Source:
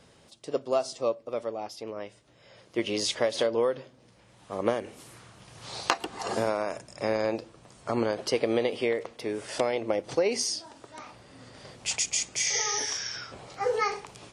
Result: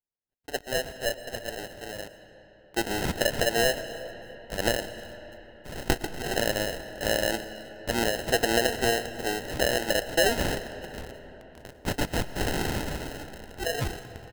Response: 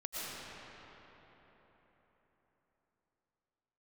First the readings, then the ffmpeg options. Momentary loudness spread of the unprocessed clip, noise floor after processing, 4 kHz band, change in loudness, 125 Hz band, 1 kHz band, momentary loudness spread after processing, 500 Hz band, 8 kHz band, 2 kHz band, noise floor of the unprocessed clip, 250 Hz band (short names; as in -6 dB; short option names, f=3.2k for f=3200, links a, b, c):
17 LU, -55 dBFS, +3.0 dB, +1.0 dB, +8.5 dB, +0.5 dB, 18 LU, -0.5 dB, -2.5 dB, +6.5 dB, -59 dBFS, +1.5 dB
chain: -filter_complex "[0:a]highpass=150,acrossover=split=3300[a][b];[a]acrusher=bits=6:mix=0:aa=0.000001[c];[c][b]amix=inputs=2:normalize=0,dynaudnorm=f=280:g=17:m=5.5dB,asplit=2[d][e];[e]adelay=319,lowpass=f=2k:p=1,volume=-21.5dB,asplit=2[f][g];[g]adelay=319,lowpass=f=2k:p=1,volume=0.42,asplit=2[h][i];[i]adelay=319,lowpass=f=2k:p=1,volume=0.42[j];[d][f][h][j]amix=inputs=4:normalize=0,acrusher=samples=38:mix=1:aa=0.000001,equalizer=f=300:w=0.36:g=-6,agate=range=-33dB:threshold=-51dB:ratio=16:detection=peak,asplit=2[k][l];[1:a]atrim=start_sample=2205[m];[l][m]afir=irnorm=-1:irlink=0,volume=-13.5dB[n];[k][n]amix=inputs=2:normalize=0"